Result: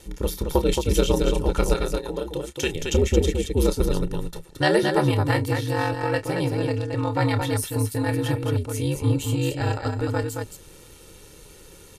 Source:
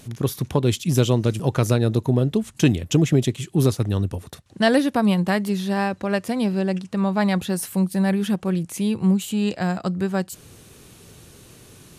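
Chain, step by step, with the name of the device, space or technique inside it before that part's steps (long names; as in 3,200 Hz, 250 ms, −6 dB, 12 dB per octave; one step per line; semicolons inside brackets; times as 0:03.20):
0:01.74–0:02.75: high-pass filter 680 Hz 6 dB per octave
ring-modulated robot voice (ring modulation 76 Hz; comb filter 2.2 ms, depth 65%)
loudspeakers that aren't time-aligned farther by 10 metres −11 dB, 76 metres −5 dB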